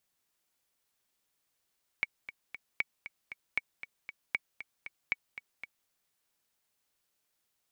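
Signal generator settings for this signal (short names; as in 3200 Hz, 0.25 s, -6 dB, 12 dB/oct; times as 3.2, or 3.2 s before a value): metronome 233 bpm, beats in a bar 3, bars 5, 2250 Hz, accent 13 dB -15.5 dBFS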